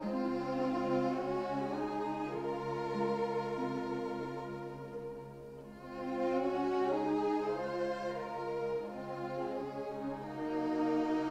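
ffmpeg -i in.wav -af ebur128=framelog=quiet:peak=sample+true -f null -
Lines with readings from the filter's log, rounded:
Integrated loudness:
  I:         -36.4 LUFS
  Threshold: -46.6 LUFS
Loudness range:
  LRA:         3.6 LU
  Threshold: -56.9 LUFS
  LRA low:   -39.0 LUFS
  LRA high:  -35.4 LUFS
Sample peak:
  Peak:      -21.4 dBFS
True peak:
  Peak:      -21.4 dBFS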